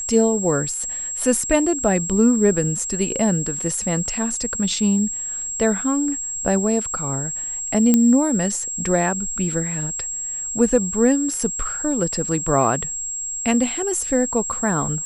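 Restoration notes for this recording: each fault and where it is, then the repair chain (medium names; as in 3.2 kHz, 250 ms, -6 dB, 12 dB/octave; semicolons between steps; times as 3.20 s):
whine 7.6 kHz -25 dBFS
7.94 s: pop -3 dBFS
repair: de-click; band-stop 7.6 kHz, Q 30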